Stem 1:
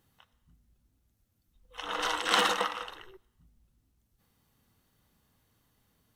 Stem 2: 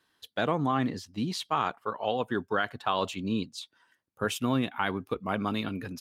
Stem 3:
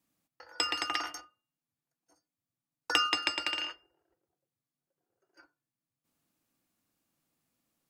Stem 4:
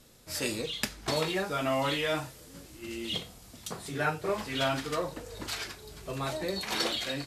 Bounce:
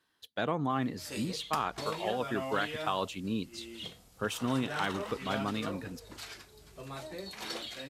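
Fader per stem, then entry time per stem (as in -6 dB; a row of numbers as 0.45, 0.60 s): -15.5 dB, -4.0 dB, off, -9.0 dB; 2.45 s, 0.00 s, off, 0.70 s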